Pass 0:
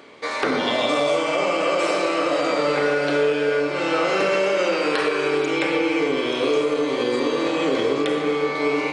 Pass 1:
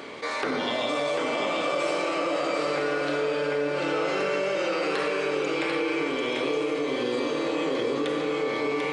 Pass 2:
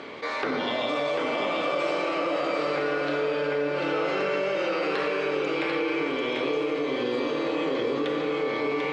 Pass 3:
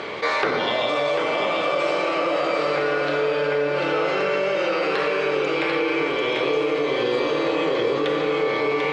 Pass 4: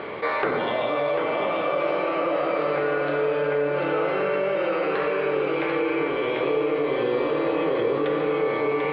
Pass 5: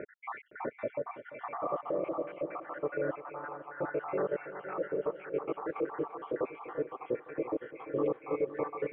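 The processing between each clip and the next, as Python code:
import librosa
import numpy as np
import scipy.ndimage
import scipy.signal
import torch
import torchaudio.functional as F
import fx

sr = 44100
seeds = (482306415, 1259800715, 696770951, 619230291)

y1 = x + 10.0 ** (-5.0 / 20.0) * np.pad(x, (int(743 * sr / 1000.0), 0))[:len(x)]
y1 = fx.env_flatten(y1, sr, amount_pct=50)
y1 = y1 * 10.0 ** (-8.5 / 20.0)
y2 = scipy.signal.sosfilt(scipy.signal.butter(2, 4500.0, 'lowpass', fs=sr, output='sos'), y1)
y3 = fx.peak_eq(y2, sr, hz=260.0, db=-12.0, octaves=0.3)
y3 = fx.rider(y3, sr, range_db=10, speed_s=0.5)
y3 = y3 * 10.0 ** (5.5 / 20.0)
y4 = fx.air_absorb(y3, sr, metres=440.0)
y5 = fx.spec_dropout(y4, sr, seeds[0], share_pct=75)
y5 = scipy.signal.sosfilt(scipy.signal.bessel(8, 1400.0, 'lowpass', norm='mag', fs=sr, output='sos'), y5)
y5 = fx.echo_heads(y5, sr, ms=171, heads='second and third', feedback_pct=45, wet_db=-14.0)
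y5 = y5 * 10.0 ** (-5.5 / 20.0)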